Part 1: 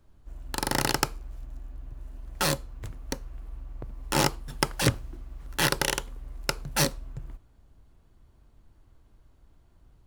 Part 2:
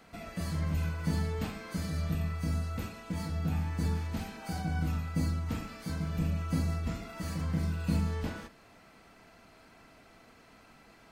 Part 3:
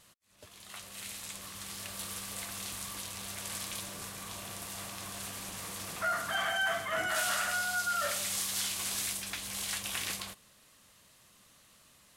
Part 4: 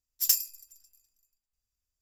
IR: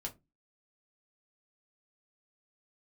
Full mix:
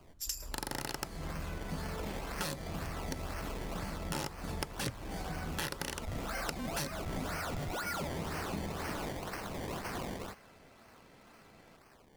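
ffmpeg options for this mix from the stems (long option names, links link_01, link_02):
-filter_complex "[0:a]volume=-4dB[link_01];[1:a]highpass=frequency=190:poles=1,adelay=650,volume=-4dB[link_02];[2:a]acrusher=samples=23:mix=1:aa=0.000001:lfo=1:lforange=23:lforate=2,asoftclip=type=tanh:threshold=-34dB,volume=1dB[link_03];[3:a]lowpass=9000,volume=-5dB[link_04];[link_01][link_02][link_03][link_04]amix=inputs=4:normalize=0,acompressor=threshold=-34dB:ratio=6"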